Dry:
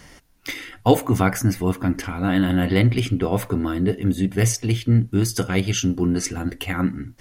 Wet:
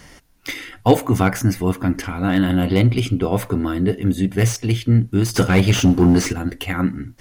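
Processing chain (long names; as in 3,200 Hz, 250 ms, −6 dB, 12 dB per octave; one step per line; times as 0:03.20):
0:02.54–0:03.31: parametric band 1,800 Hz −10.5 dB 0.26 octaves
0:05.34–0:06.33: leveller curve on the samples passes 2
slew-rate limiting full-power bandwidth 300 Hz
level +2 dB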